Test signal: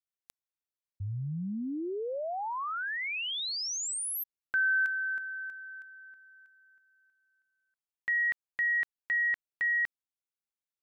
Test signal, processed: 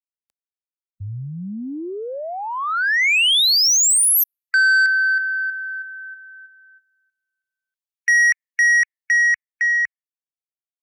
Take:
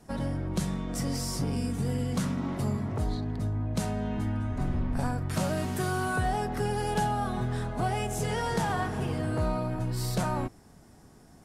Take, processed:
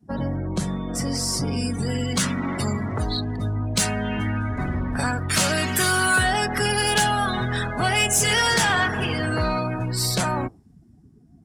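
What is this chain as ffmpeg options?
ffmpeg -i in.wav -filter_complex "[0:a]afftdn=noise_reduction=24:noise_floor=-46,highpass=53,adynamicequalizer=threshold=0.00562:dfrequency=150:dqfactor=4:tfrequency=150:tqfactor=4:attack=5:release=100:ratio=0.417:range=2.5:mode=cutabove:tftype=bell,acrossover=split=820|1600[link_01][link_02][link_03];[link_03]dynaudnorm=framelen=220:gausssize=17:maxgain=16dB[link_04];[link_01][link_02][link_04]amix=inputs=3:normalize=0,asoftclip=type=tanh:threshold=-18dB,volume=6dB" out.wav

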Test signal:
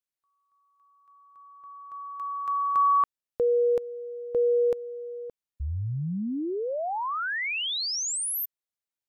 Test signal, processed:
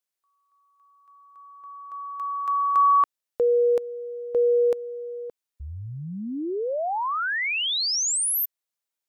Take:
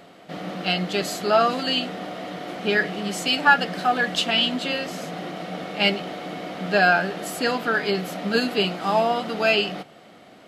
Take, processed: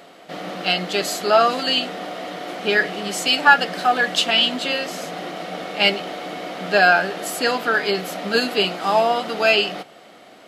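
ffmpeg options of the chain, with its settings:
ffmpeg -i in.wav -af "bass=frequency=250:gain=-9,treble=frequency=4000:gain=2,volume=3.5dB" out.wav

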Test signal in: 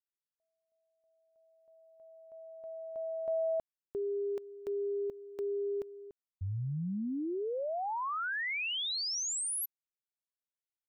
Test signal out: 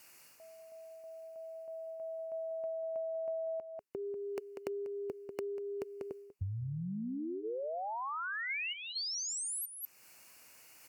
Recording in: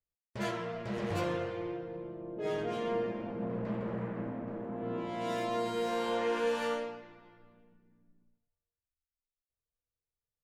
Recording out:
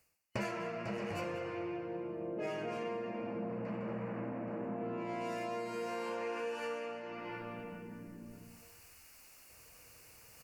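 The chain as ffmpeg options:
ffmpeg -i in.wav -filter_complex "[0:a]bandreject=frequency=410:width=12,asplit=2[link_01][link_02];[link_02]alimiter=level_in=6.5dB:limit=-24dB:level=0:latency=1,volume=-6.5dB,volume=0.5dB[link_03];[link_01][link_03]amix=inputs=2:normalize=0,highpass=frequency=150:poles=1,asplit=2[link_04][link_05];[link_05]adelay=192.4,volume=-10dB,highshelf=frequency=4000:gain=-4.33[link_06];[link_04][link_06]amix=inputs=2:normalize=0,areverse,acompressor=mode=upward:threshold=-40dB:ratio=2.5:attack=58:release=364:knee=2.83:detection=peak,areverse,superequalizer=12b=1.58:13b=0.282,acompressor=threshold=-41dB:ratio=8:attack=94:release=455:knee=1:detection=rms,volume=3dB" -ar 48000 -c:a libopus -b:a 128k out.opus

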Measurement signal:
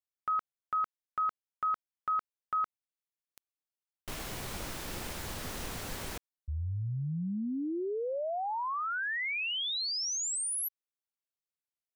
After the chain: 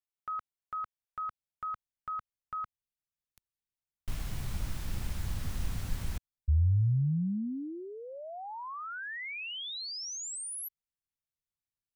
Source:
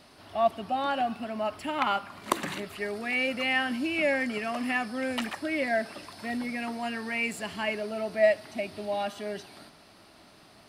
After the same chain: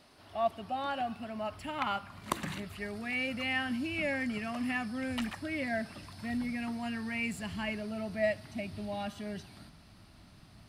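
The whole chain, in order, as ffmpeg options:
ffmpeg -i in.wav -af "asubboost=boost=8:cutoff=150,volume=-5.5dB" out.wav

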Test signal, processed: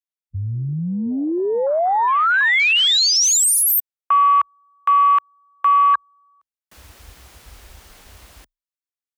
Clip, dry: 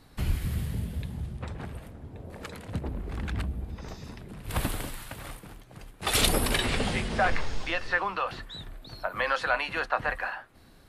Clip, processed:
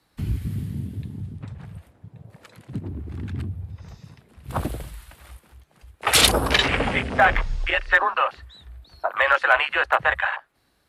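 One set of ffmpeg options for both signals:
ffmpeg -i in.wav -filter_complex "[0:a]afreqshift=27,asplit=2[link_01][link_02];[link_02]aeval=exprs='(mod(5.31*val(0)+1,2)-1)/5.31':channel_layout=same,volume=-7.5dB[link_03];[link_01][link_03]amix=inputs=2:normalize=0,lowshelf=frequency=420:gain=-9.5,afwtdn=0.0316,volume=7.5dB" out.wav

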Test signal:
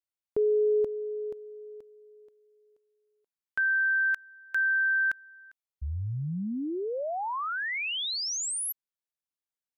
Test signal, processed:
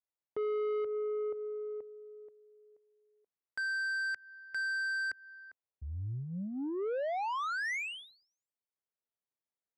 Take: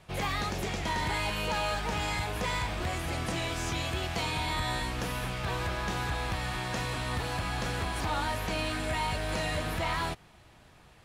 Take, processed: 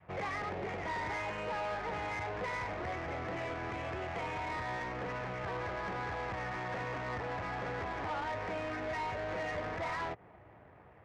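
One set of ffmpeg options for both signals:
ffmpeg -i in.wav -af "adynamicequalizer=threshold=0.00708:dfrequency=450:dqfactor=0.74:tfrequency=450:tqfactor=0.74:attack=5:release=100:ratio=0.375:range=2:mode=boostabove:tftype=bell,acompressor=threshold=-37dB:ratio=2:attack=1.4:release=165:knee=6:detection=rms,highpass=110,equalizer=frequency=150:width_type=q:width=4:gain=-9,equalizer=frequency=230:width_type=q:width=4:gain=-8,equalizer=frequency=340:width_type=q:width=4:gain=-4,equalizer=frequency=2000:width_type=q:width=4:gain=7,lowpass=frequency=3100:width=0.5412,lowpass=frequency=3100:width=1.3066,asoftclip=type=tanh:threshold=-35.5dB,adynamicsmooth=sensitivity=6.5:basefreq=970,volume=5dB" out.wav

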